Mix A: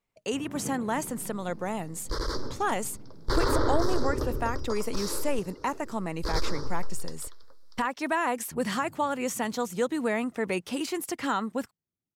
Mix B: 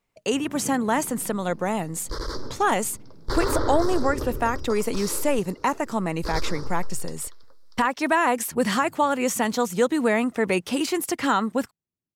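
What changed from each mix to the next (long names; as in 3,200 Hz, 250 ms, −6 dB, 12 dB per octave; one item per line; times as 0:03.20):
speech +6.5 dB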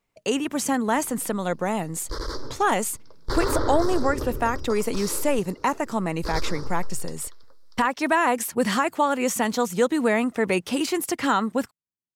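first sound −11.5 dB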